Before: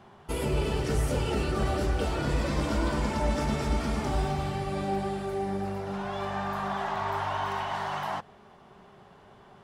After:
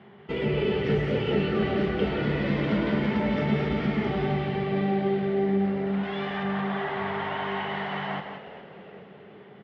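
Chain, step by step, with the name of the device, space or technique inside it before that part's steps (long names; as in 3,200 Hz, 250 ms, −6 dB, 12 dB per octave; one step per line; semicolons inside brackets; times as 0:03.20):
0:06.03–0:06.43: spectral tilt +2.5 dB per octave
single-tap delay 179 ms −7.5 dB
frequency-shifting delay pedal into a guitar cabinet (echo with shifted repeats 415 ms, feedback 53%, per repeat −120 Hz, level −14 dB; loudspeaker in its box 110–3,700 Hz, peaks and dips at 140 Hz +6 dB, 200 Hz +10 dB, 420 Hz +9 dB, 1,000 Hz −4 dB, 2,000 Hz +10 dB, 3,100 Hz +5 dB)
level −1.5 dB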